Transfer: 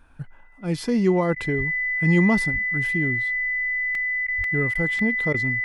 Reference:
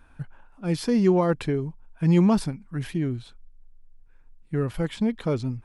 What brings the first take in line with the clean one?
band-stop 2 kHz, Q 30; 1.57–1.69 s: high-pass 140 Hz 24 dB/octave; 2.52–2.64 s: high-pass 140 Hz 24 dB/octave; 4.37–4.49 s: high-pass 140 Hz 24 dB/octave; interpolate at 3.95/4.44/4.99 s, 2.1 ms; interpolate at 1.35/4.27/4.74/5.33 s, 11 ms

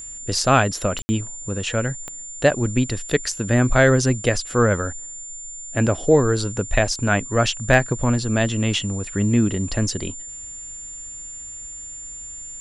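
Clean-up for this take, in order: clip repair -3.5 dBFS; de-click; band-stop 7.2 kHz, Q 30; room tone fill 1.02–1.09 s

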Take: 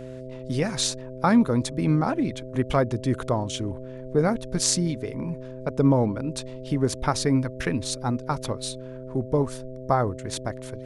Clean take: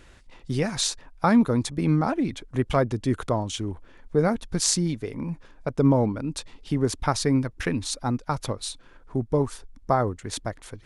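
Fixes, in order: de-hum 128.8 Hz, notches 5

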